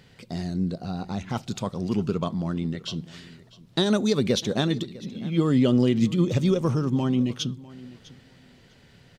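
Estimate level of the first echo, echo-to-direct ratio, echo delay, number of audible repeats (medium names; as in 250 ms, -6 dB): -20.0 dB, -20.0 dB, 651 ms, 2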